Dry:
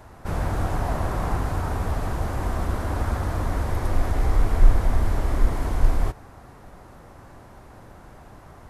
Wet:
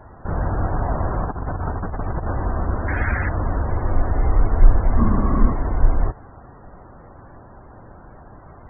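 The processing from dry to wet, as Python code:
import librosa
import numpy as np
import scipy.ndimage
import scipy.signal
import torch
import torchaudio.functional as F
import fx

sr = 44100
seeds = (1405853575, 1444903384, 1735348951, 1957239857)

y = fx.over_compress(x, sr, threshold_db=-27.0, ratio=-0.5, at=(1.25, 2.33))
y = fx.band_shelf(y, sr, hz=2500.0, db=13.5, octaves=1.7, at=(2.88, 3.29))
y = fx.spec_topn(y, sr, count=64)
y = fx.small_body(y, sr, hz=(210.0, 1100.0, 2800.0), ring_ms=45, db=fx.line((4.97, 17.0), (5.51, 13.0)), at=(4.97, 5.51), fade=0.02)
y = y * librosa.db_to_amplitude(3.0)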